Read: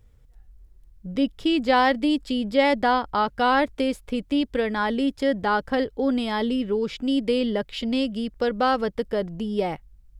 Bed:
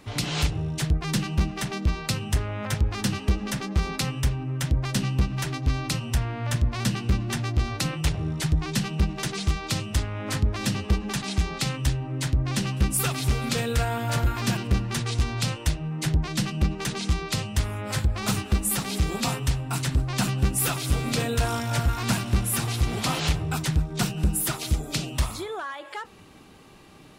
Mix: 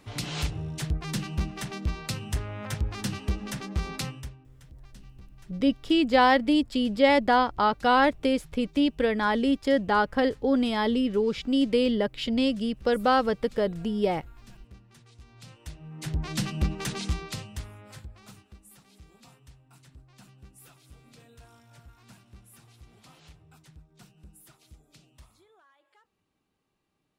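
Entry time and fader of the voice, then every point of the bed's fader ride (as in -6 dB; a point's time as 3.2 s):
4.45 s, -0.5 dB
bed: 4.05 s -5.5 dB
4.5 s -27.5 dB
15.2 s -27.5 dB
16.32 s -3 dB
17 s -3 dB
18.57 s -28.5 dB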